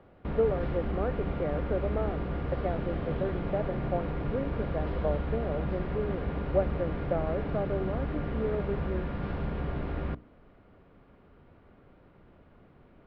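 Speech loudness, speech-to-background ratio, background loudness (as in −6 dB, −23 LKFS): −34.5 LKFS, −0.5 dB, −34.0 LKFS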